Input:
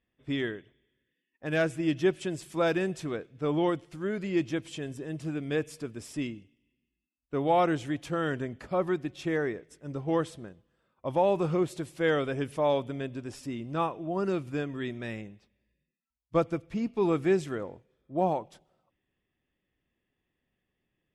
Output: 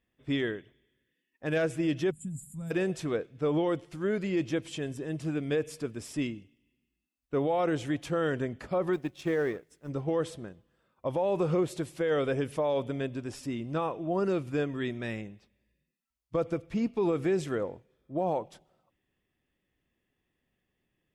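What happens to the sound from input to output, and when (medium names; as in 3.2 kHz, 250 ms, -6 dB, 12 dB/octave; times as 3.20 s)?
2.11–2.71 s: time-frequency box 260–6800 Hz -29 dB
8.93–9.89 s: companding laws mixed up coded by A
whole clip: dynamic bell 490 Hz, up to +6 dB, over -41 dBFS, Q 3.5; peak limiter -22 dBFS; trim +1.5 dB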